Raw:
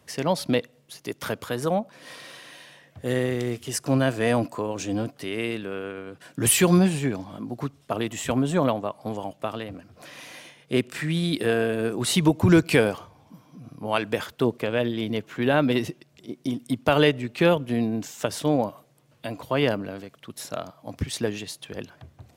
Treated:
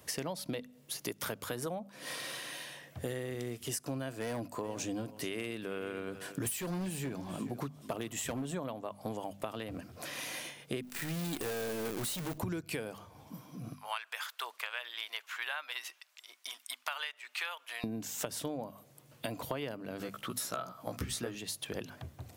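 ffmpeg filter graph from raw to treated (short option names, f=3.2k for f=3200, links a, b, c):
-filter_complex "[0:a]asettb=1/sr,asplit=3[a][b][c];[a]atrim=end=4.204[d];[b]atrim=start=4.2:end=8.45,asetpts=PTS-STARTPTS,afade=t=in:d=0.004:c=qsin,afade=t=out:st=4.246:d=0.004:c=qsin,volume=18dB,asoftclip=hard,volume=-18dB,aecho=1:1:429:0.119,atrim=end_sample=187425[e];[c]atrim=start=8.446[f];[d][e]acrossfade=d=0.004:c1=hsin:c2=qsin[g];[g][f]acrossfade=d=0.004:c1=qsin:c2=hsin,asettb=1/sr,asplit=3[h][i][j];[h]atrim=end=10.824[k];[i]atrim=start=10.82:end=12.38,asetpts=PTS-STARTPTS,afade=t=in:d=0.004:c=qsin,afade=t=out:st=1.556:d=0.004:c=qsin,acrusher=bits=6:dc=4:mix=0:aa=0.000001,volume=25.5dB,asoftclip=hard,volume=-25.5dB[l];[j]atrim=start=12.376[m];[k][l]acrossfade=d=0.004:c1=hsin:c2=qsin[n];[n][m]acrossfade=d=0.004:c1=qsin:c2=hsin,asettb=1/sr,asplit=3[o][p][q];[o]atrim=end=13.744[r];[p]atrim=start=13.74:end=17.84,asetpts=PTS-STARTPTS,afade=t=in:d=0.004:c=qsin,afade=t=out:st=4.096:d=0.004:c=qsin,highpass=f=1k:w=0.5412,highpass=f=1k:w=1.3066,highshelf=f=7.3k:g=-7[s];[q]atrim=start=17.836[t];[r][s]acrossfade=d=0.004:c1=hsin:c2=qsin[u];[u][t]acrossfade=d=0.004:c1=qsin:c2=hsin,asettb=1/sr,asplit=3[v][w][x];[v]atrim=end=19.994[y];[w]atrim=start=19.99:end=21.35,asetpts=PTS-STARTPTS,afade=t=in:d=0.004:c=qsin,afade=t=out:st=1.356:d=0.004:c=qsin,equalizer=f=1.3k:t=o:w=0.28:g=11,bandreject=f=60:t=h:w=6,bandreject=f=120:t=h:w=6,asplit=2[z][aa];[aa]adelay=16,volume=-2dB[ab];[z][ab]amix=inputs=2:normalize=0,atrim=end_sample=59976[ac];[x]atrim=start=21.346[ad];[y][ac]acrossfade=d=0.004:c1=hsin:c2=qsin[ae];[ae][ad]acrossfade=d=0.004:c1=qsin:c2=hsin,highshelf=f=9k:g=11,bandreject=f=50:t=h:w=6,bandreject=f=100:t=h:w=6,bandreject=f=150:t=h:w=6,bandreject=f=200:t=h:w=6,bandreject=f=250:t=h:w=6,acompressor=threshold=-35dB:ratio=16,volume=1dB"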